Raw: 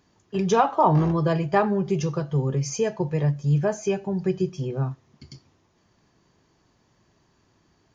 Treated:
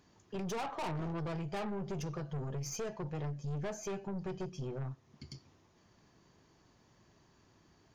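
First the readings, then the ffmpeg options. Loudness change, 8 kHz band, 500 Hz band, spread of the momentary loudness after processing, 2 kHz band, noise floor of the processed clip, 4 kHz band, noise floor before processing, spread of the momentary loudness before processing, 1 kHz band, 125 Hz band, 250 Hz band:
−16.0 dB, can't be measured, −16.5 dB, 8 LU, −13.5 dB, −68 dBFS, −10.0 dB, −65 dBFS, 9 LU, −18.5 dB, −15.5 dB, −15.5 dB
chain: -af "aeval=exprs='(tanh(22.4*val(0)+0.35)-tanh(0.35))/22.4':channel_layout=same,acompressor=threshold=-48dB:ratio=1.5,volume=-1dB"

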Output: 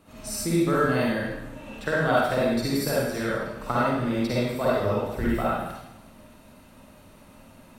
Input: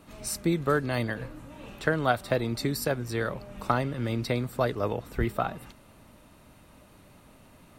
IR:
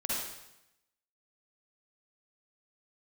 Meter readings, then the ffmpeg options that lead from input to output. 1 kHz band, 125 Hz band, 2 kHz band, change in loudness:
+3.5 dB, +1.0 dB, +4.0 dB, +4.0 dB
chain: -filter_complex "[1:a]atrim=start_sample=2205[link_01];[0:a][link_01]afir=irnorm=-1:irlink=0,volume=-2dB"

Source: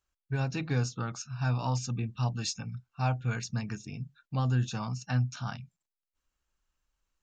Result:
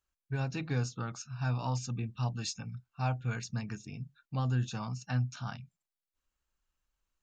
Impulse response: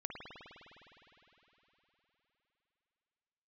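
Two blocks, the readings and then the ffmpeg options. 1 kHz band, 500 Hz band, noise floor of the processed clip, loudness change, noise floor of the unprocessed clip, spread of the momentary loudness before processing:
−3.0 dB, −3.0 dB, below −85 dBFS, −3.0 dB, below −85 dBFS, 10 LU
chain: -af "equalizer=frequency=5600:width=5.7:gain=-2,volume=-3dB"

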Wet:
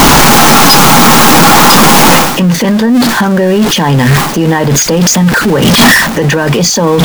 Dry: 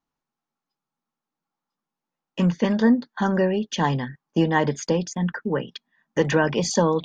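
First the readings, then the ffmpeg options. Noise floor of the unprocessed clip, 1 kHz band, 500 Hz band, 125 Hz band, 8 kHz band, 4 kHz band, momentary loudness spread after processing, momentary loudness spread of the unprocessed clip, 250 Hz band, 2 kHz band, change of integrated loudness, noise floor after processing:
below −85 dBFS, +22.5 dB, +14.0 dB, +17.5 dB, +27.0 dB, +27.0 dB, 6 LU, 8 LU, +16.0 dB, +22.0 dB, +17.5 dB, −12 dBFS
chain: -af "aeval=exprs='val(0)+0.5*0.0501*sgn(val(0))':channel_layout=same,areverse,acompressor=threshold=-31dB:ratio=16,areverse,alimiter=level_in=32.5dB:limit=-1dB:release=50:level=0:latency=1,volume=-1dB"

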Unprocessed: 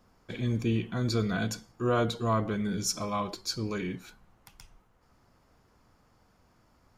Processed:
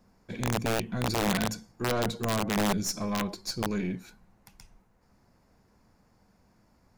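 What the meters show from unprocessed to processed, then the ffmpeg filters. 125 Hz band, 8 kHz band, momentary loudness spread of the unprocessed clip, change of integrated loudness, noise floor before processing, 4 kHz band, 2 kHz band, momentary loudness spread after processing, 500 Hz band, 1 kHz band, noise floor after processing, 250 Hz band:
−2.0 dB, +1.5 dB, 7 LU, +0.5 dB, −66 dBFS, +2.0 dB, +4.0 dB, 7 LU, 0.0 dB, +1.5 dB, −66 dBFS, +0.5 dB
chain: -af "aeval=exprs='0.168*(cos(1*acos(clip(val(0)/0.168,-1,1)))-cos(1*PI/2))+0.00531*(cos(4*acos(clip(val(0)/0.168,-1,1)))-cos(4*PI/2))+0.015*(cos(5*acos(clip(val(0)/0.168,-1,1)))-cos(5*PI/2))+0.0211*(cos(6*acos(clip(val(0)/0.168,-1,1)))-cos(6*PI/2))':channel_layout=same,equalizer=frequency=200:width_type=o:width=0.33:gain=7,equalizer=frequency=1250:width_type=o:width=0.33:gain=-6,equalizer=frequency=3150:width_type=o:width=0.33:gain=-7,aeval=exprs='(mod(7.08*val(0)+1,2)-1)/7.08':channel_layout=same,volume=-3.5dB"

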